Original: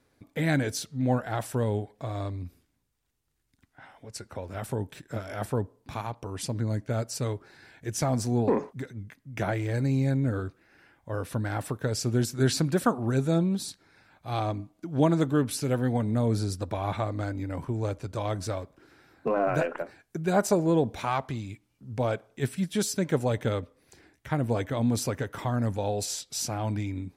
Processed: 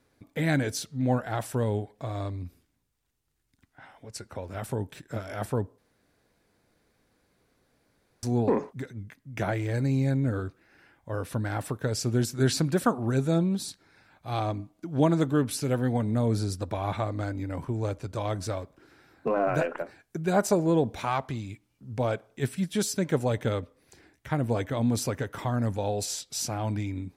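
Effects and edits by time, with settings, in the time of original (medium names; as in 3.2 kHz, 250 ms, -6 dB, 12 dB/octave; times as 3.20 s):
5.78–8.23 s: room tone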